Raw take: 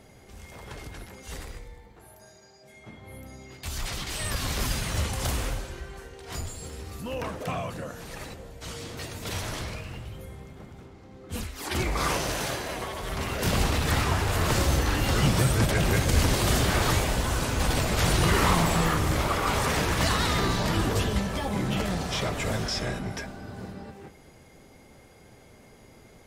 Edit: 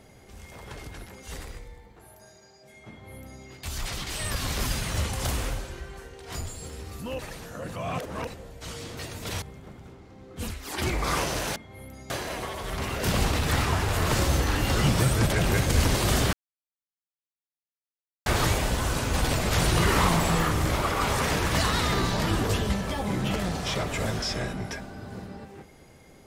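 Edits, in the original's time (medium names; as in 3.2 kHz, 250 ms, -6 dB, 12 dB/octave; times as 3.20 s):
2.89–3.43 s: copy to 12.49 s
7.19–8.27 s: reverse
9.42–10.35 s: delete
16.72 s: insert silence 1.93 s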